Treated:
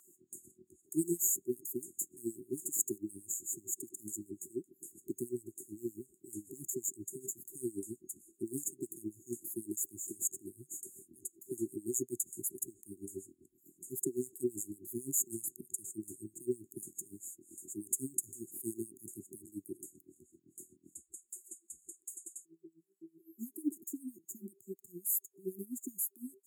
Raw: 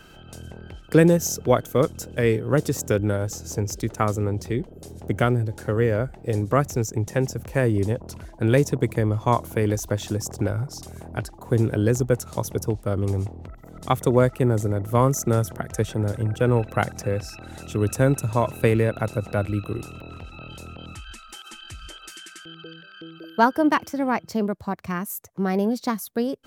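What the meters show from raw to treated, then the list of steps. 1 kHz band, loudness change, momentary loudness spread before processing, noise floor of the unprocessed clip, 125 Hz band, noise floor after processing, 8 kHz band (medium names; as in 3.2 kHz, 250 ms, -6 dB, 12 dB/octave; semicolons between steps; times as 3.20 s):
under -40 dB, -15.5 dB, 19 LU, -46 dBFS, -31.5 dB, -75 dBFS, -2.0 dB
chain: FFT band-reject 390–6600 Hz; LFO high-pass sine 7.8 Hz 600–2300 Hz; trim +1 dB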